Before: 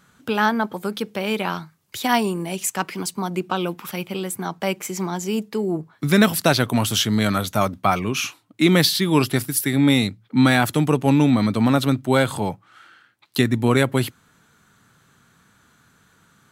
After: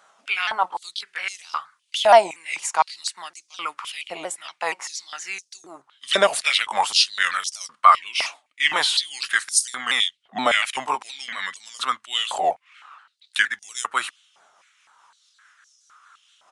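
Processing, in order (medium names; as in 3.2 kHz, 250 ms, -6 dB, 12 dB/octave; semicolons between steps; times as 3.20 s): sawtooth pitch modulation -3.5 st, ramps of 236 ms; resampled via 22.05 kHz; step-sequenced high-pass 3.9 Hz 670–5600 Hz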